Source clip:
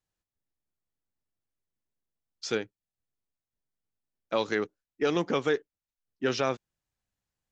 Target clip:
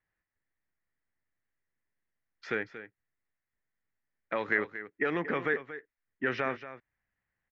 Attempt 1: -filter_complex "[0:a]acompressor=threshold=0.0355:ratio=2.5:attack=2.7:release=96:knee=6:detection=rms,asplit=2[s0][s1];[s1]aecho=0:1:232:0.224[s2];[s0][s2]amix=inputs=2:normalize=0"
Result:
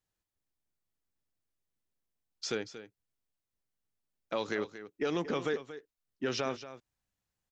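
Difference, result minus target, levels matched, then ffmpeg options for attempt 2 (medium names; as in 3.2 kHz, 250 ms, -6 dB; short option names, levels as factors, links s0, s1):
2 kHz band -7.0 dB
-filter_complex "[0:a]acompressor=threshold=0.0355:ratio=2.5:attack=2.7:release=96:knee=6:detection=rms,lowpass=f=1900:t=q:w=5,asplit=2[s0][s1];[s1]aecho=0:1:232:0.224[s2];[s0][s2]amix=inputs=2:normalize=0"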